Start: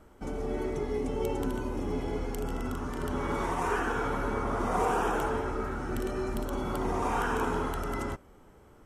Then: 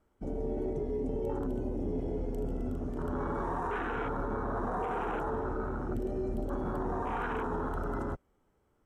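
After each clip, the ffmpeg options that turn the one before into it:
-af "afwtdn=0.0224,alimiter=level_in=2dB:limit=-24dB:level=0:latency=1:release=10,volume=-2dB"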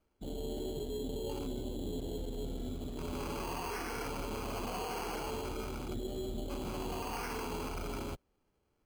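-af "acrusher=samples=12:mix=1:aa=0.000001,volume=-5dB"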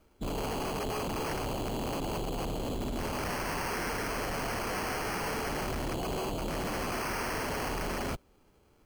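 -af "aeval=exprs='0.0299*sin(PI/2*2.82*val(0)/0.0299)':c=same"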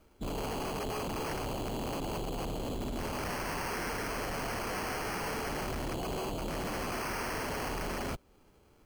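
-af "alimiter=level_in=10dB:limit=-24dB:level=0:latency=1:release=209,volume=-10dB,volume=1.5dB"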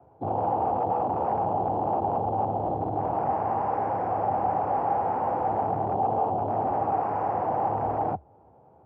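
-af "afreqshift=67,acrusher=bits=5:mode=log:mix=0:aa=0.000001,lowpass=f=790:t=q:w=7.3,volume=2.5dB"

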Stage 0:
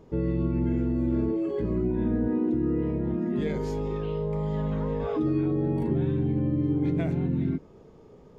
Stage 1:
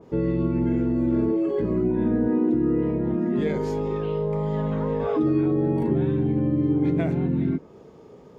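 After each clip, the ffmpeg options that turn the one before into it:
-af "highpass=f=160:p=1,adynamicequalizer=threshold=0.00251:dfrequency=2300:dqfactor=0.7:tfrequency=2300:tqfactor=0.7:attack=5:release=100:ratio=0.375:range=2:mode=cutabove:tftype=highshelf,volume=5.5dB"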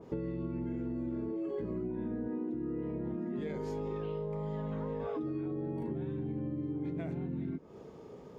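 -af "acompressor=threshold=-31dB:ratio=10,volume=-2.5dB"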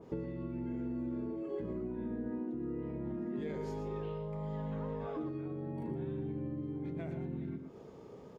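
-af "aecho=1:1:117:0.376,volume=-2dB"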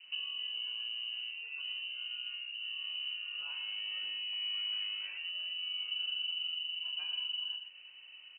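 -af "equalizer=f=125:t=o:w=1:g=7,equalizer=f=250:t=o:w=1:g=-7,equalizer=f=500:t=o:w=1:g=-4,equalizer=f=1k:t=o:w=1:g=-7,lowpass=f=2.6k:t=q:w=0.5098,lowpass=f=2.6k:t=q:w=0.6013,lowpass=f=2.6k:t=q:w=0.9,lowpass=f=2.6k:t=q:w=2.563,afreqshift=-3100,volume=1dB"

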